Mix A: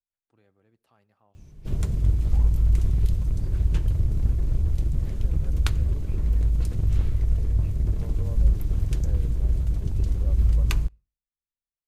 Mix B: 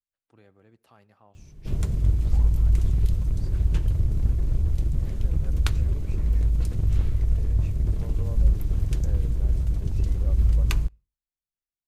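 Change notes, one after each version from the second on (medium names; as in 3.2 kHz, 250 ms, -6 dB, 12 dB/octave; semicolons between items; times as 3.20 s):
first voice +8.0 dB; second voice: remove distance through air 410 m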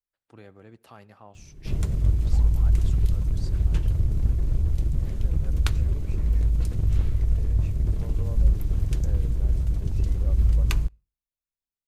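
first voice +8.5 dB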